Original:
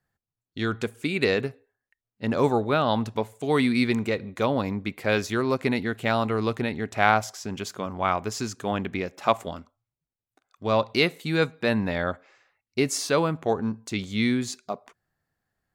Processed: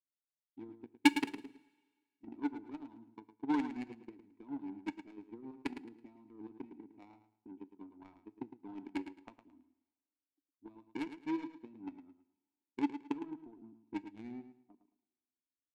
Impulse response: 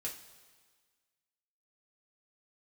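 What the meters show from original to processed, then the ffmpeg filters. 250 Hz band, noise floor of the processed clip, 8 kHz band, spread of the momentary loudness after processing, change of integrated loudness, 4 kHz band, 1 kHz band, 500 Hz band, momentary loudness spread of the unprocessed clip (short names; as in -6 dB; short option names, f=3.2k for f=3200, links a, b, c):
-11.5 dB, under -85 dBFS, under -15 dB, 22 LU, -14.0 dB, -16.5 dB, -18.5 dB, -26.0 dB, 11 LU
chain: -filter_complex "[0:a]bass=f=250:g=8,treble=f=4k:g=14,aecho=1:1:3.1:0.72,acrossover=split=220|2100[a][b][c];[a]acompressor=threshold=-37dB:ratio=4[d];[b]acompressor=threshold=-26dB:ratio=4[e];[c]acompressor=threshold=-31dB:ratio=4[f];[d][e][f]amix=inputs=3:normalize=0,asplit=3[g][h][i];[g]bandpass=f=300:t=q:w=8,volume=0dB[j];[h]bandpass=f=870:t=q:w=8,volume=-6dB[k];[i]bandpass=f=2.24k:t=q:w=8,volume=-9dB[l];[j][k][l]amix=inputs=3:normalize=0,aeval=exprs='0.106*(cos(1*acos(clip(val(0)/0.106,-1,1)))-cos(1*PI/2))+0.0335*(cos(3*acos(clip(val(0)/0.106,-1,1)))-cos(3*PI/2))':c=same,crystalizer=i=4:c=0,adynamicsmooth=sensitivity=6:basefreq=560,aecho=1:1:109|218|327:0.299|0.0746|0.0187,asplit=2[m][n];[1:a]atrim=start_sample=2205[o];[n][o]afir=irnorm=-1:irlink=0,volume=-13.5dB[p];[m][p]amix=inputs=2:normalize=0,volume=6.5dB"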